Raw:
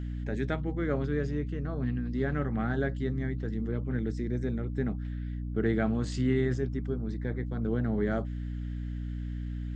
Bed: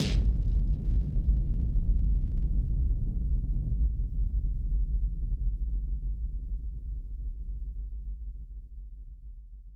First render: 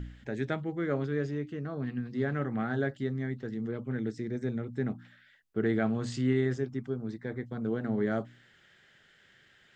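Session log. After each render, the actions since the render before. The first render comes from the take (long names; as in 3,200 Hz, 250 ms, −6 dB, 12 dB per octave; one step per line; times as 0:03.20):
hum removal 60 Hz, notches 5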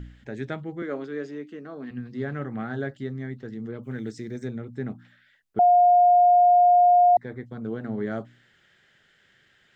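0:00.82–0:01.91: high-pass filter 210 Hz 24 dB per octave
0:03.83–0:04.48: high-shelf EQ 4,200 Hz +12 dB
0:05.59–0:07.17: beep over 711 Hz −13 dBFS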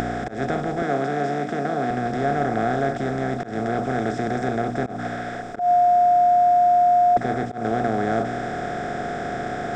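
compressor on every frequency bin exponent 0.2
volume swells 146 ms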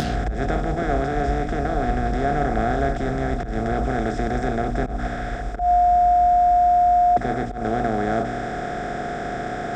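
mix in bed −0.5 dB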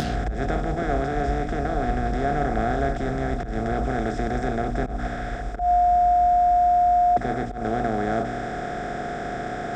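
level −2 dB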